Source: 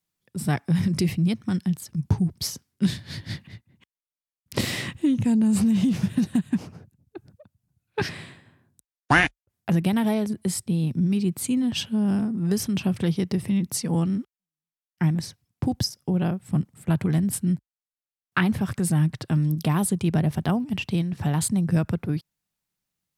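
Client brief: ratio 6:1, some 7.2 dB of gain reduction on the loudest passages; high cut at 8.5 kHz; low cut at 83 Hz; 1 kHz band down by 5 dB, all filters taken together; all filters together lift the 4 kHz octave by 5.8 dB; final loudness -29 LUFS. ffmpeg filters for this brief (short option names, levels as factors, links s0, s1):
-af "highpass=83,lowpass=8500,equalizer=f=1000:t=o:g=-7.5,equalizer=f=4000:t=o:g=8.5,acompressor=threshold=0.0631:ratio=6,volume=1.06"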